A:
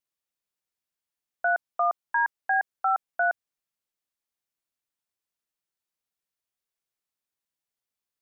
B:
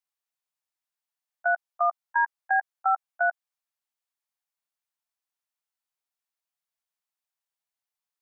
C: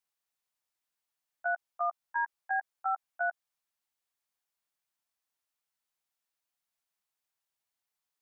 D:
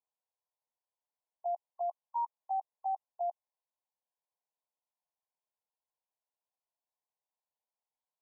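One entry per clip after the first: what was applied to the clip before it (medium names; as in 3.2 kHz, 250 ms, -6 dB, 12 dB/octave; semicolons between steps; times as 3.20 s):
level held to a coarse grid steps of 23 dB; resonant low shelf 510 Hz -12.5 dB, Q 1.5
peak limiter -25 dBFS, peak gain reduction 10 dB; trim +2 dB
brick-wall FIR band-pass 420–1100 Hz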